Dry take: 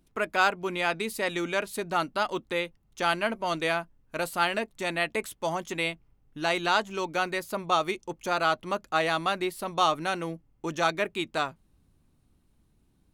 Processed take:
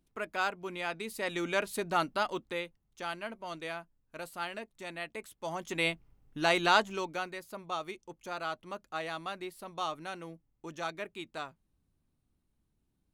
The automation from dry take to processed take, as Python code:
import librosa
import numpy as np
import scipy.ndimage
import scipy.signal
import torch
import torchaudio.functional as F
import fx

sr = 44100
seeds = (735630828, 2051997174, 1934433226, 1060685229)

y = fx.gain(x, sr, db=fx.line((0.99, -8.5), (1.57, -2.0), (2.07, -2.0), (3.08, -12.0), (5.29, -12.0), (5.88, 0.0), (6.8, 0.0), (7.35, -11.5)))